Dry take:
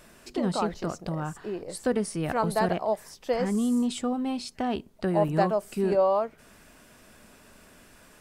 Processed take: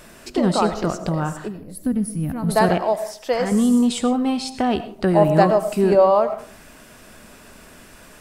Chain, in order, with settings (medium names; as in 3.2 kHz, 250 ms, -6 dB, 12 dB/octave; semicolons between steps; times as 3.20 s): 1.48–2.49 s: time-frequency box 310–9600 Hz -17 dB; 2.78–3.52 s: bass shelf 390 Hz -8 dB; algorithmic reverb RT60 0.49 s, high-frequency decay 0.5×, pre-delay 55 ms, DRR 11.5 dB; trim +8.5 dB